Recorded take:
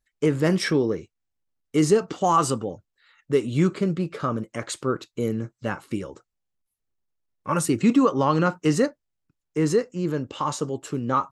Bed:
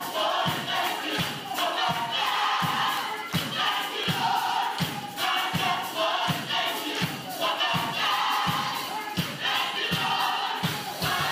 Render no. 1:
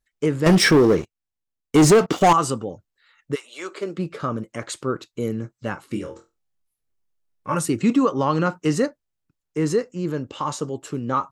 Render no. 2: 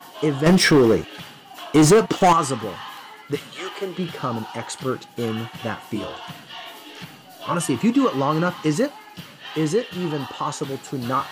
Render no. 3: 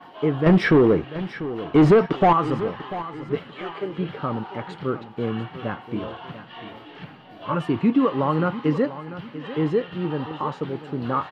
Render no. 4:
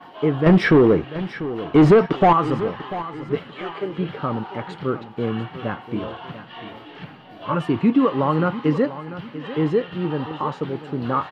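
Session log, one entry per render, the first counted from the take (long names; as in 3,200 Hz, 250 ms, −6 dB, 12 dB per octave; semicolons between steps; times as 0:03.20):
0:00.46–0:02.33: leveller curve on the samples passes 3; 0:03.34–0:03.97: high-pass filter 980 Hz → 230 Hz 24 dB per octave; 0:05.87–0:07.55: flutter between parallel walls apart 4.1 metres, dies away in 0.24 s
mix in bed −10 dB
high-frequency loss of the air 400 metres; repeating echo 693 ms, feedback 38%, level −14 dB
level +2 dB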